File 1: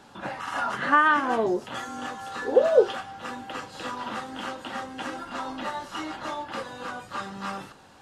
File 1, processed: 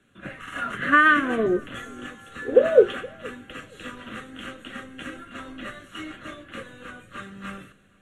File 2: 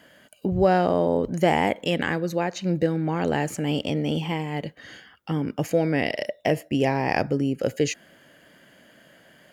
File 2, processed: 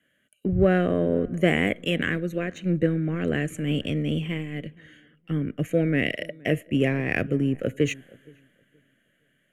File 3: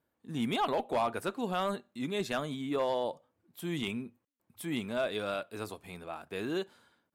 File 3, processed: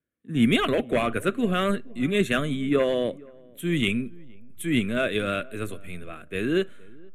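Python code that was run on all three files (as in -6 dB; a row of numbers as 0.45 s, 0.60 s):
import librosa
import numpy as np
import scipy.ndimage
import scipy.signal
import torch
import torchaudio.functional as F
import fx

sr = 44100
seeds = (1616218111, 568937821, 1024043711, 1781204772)

p1 = scipy.signal.sosfilt(scipy.signal.butter(4, 12000.0, 'lowpass', fs=sr, output='sos'), x)
p2 = fx.backlash(p1, sr, play_db=-22.0)
p3 = p1 + (p2 * 10.0 ** (-10.0 / 20.0))
p4 = fx.fixed_phaser(p3, sr, hz=2100.0, stages=4)
p5 = fx.echo_filtered(p4, sr, ms=471, feedback_pct=40, hz=1100.0, wet_db=-20.0)
p6 = fx.band_widen(p5, sr, depth_pct=40)
y = p6 * 10.0 ** (-26 / 20.0) / np.sqrt(np.mean(np.square(p6)))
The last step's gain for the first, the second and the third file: +2.0 dB, 0.0 dB, +12.0 dB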